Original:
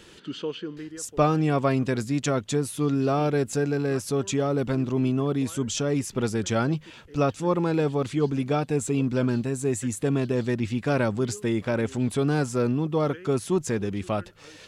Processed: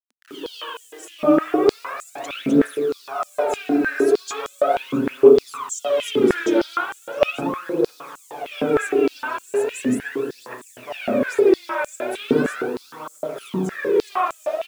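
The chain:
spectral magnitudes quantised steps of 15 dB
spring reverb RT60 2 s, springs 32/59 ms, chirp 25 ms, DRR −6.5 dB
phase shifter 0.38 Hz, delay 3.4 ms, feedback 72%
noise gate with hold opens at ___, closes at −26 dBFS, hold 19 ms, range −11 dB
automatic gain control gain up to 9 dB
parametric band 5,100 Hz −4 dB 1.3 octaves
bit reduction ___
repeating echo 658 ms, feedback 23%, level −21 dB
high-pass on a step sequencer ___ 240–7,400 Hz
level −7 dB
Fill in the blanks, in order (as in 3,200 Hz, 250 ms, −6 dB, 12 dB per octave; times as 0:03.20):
−23 dBFS, 7 bits, 6.5 Hz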